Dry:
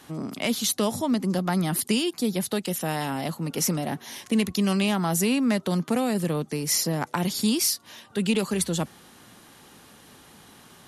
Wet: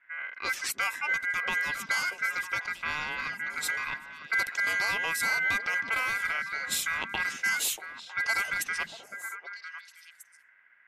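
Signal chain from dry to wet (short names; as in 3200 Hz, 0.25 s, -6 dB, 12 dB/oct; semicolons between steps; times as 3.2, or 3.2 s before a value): low-pass opened by the level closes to 320 Hz, open at -20 dBFS; ring modulator 1800 Hz; delay with a stepping band-pass 0.318 s, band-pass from 200 Hz, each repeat 1.4 oct, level -2.5 dB; gain -2.5 dB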